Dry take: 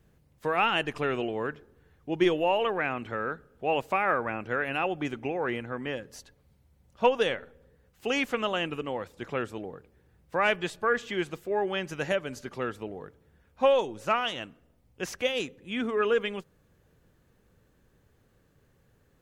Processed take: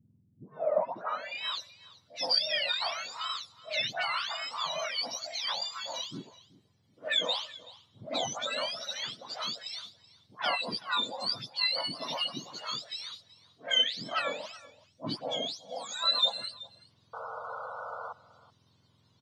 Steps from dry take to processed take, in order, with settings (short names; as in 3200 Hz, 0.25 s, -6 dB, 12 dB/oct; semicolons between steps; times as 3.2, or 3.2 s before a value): spectrum mirrored in octaves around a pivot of 1300 Hz; in parallel at -2 dB: compressor, threshold -39 dBFS, peak gain reduction 17 dB; on the sum: low-pass sweep 230 Hz -> 4700 Hz, 0.31–1.53; dispersion highs, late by 0.117 s, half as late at 1600 Hz; painted sound noise, 17.13–18.13, 450–1500 Hz -35 dBFS; on a send: echo 0.378 s -20 dB; on the sum: gain -5 dB